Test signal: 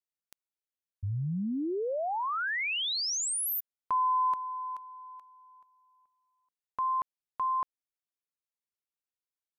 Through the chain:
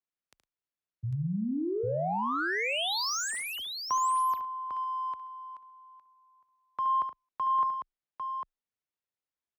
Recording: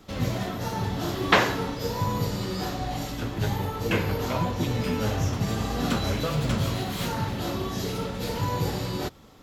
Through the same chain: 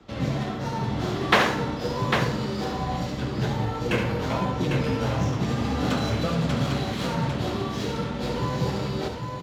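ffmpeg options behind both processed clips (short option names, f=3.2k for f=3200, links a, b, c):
-af "adynamicsmooth=sensitivity=7:basefreq=4.3k,afreqshift=17,aecho=1:1:72|109|800:0.398|0.15|0.531"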